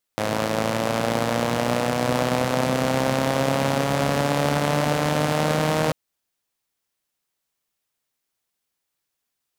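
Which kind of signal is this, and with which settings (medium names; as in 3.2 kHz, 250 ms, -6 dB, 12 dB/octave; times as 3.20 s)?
four-cylinder engine model, changing speed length 5.74 s, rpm 3200, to 4700, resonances 160/250/520 Hz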